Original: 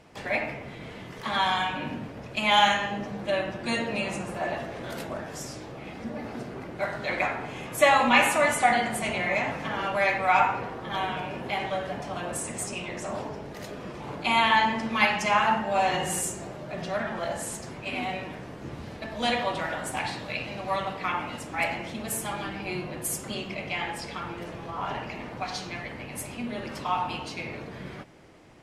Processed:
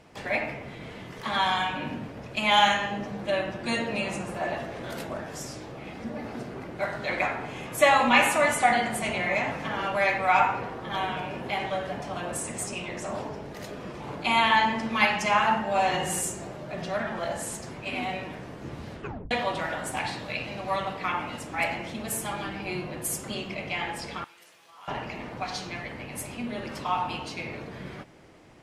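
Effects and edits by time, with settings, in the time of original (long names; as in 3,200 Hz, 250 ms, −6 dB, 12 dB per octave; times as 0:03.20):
0:18.91: tape stop 0.40 s
0:24.24–0:24.88: first difference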